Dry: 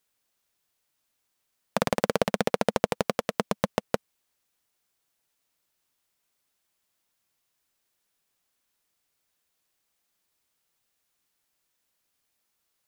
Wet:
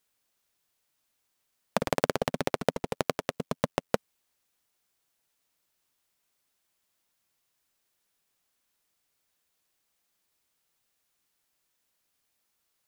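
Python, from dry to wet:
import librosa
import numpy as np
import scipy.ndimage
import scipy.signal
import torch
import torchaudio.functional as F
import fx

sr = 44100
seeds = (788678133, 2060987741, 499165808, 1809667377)

y = fx.ring_mod(x, sr, carrier_hz=44.0, at=(1.77, 3.88), fade=0.02)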